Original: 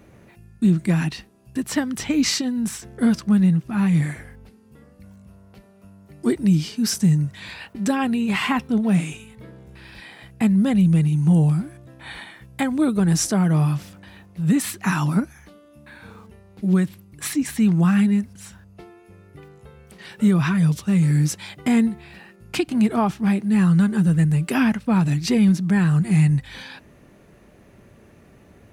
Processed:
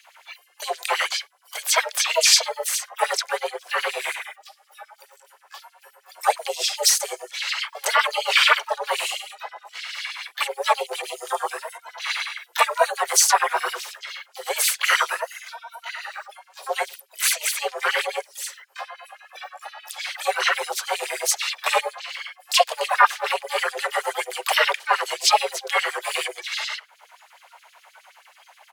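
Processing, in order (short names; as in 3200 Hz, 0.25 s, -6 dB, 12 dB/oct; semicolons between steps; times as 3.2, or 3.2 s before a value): spectral noise reduction 12 dB; in parallel at -0.5 dB: limiter -19 dBFS, peak gain reduction 10 dB; on the sum: LFO high-pass sine 9.5 Hz 450–4400 Hz; frequency shift +350 Hz; harmoniser -5 st -9 dB, -4 st -15 dB, +7 st -9 dB; mismatched tape noise reduction encoder only; gain +1.5 dB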